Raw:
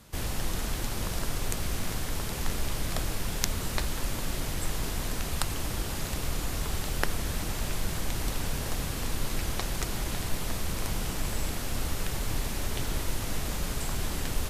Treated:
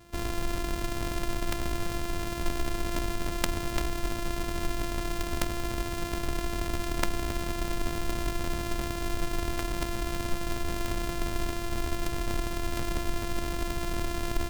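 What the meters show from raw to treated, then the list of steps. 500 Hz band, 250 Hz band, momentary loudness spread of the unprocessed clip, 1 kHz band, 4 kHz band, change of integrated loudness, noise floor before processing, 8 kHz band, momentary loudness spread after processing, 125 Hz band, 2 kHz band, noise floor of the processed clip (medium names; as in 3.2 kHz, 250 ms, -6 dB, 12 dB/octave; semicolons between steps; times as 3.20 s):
+4.0 dB, +3.5 dB, 2 LU, +3.0 dB, -2.0 dB, -0.5 dB, -34 dBFS, -5.0 dB, 2 LU, -2.0 dB, +0.5 dB, -34 dBFS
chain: sorted samples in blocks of 128 samples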